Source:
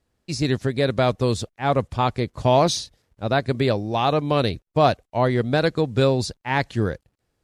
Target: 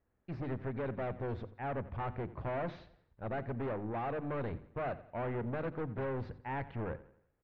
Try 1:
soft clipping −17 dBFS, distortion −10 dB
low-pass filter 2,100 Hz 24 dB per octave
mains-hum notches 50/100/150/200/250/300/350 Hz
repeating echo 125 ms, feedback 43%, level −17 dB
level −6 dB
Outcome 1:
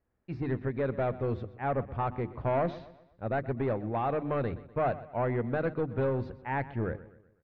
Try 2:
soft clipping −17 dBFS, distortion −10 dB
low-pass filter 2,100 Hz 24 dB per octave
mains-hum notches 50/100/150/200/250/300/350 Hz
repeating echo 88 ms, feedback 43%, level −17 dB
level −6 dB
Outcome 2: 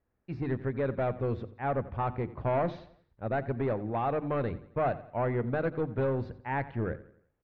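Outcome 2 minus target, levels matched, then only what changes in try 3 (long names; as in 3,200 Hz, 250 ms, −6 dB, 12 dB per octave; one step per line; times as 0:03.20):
soft clipping: distortion −7 dB
change: soft clipping −28 dBFS, distortion −4 dB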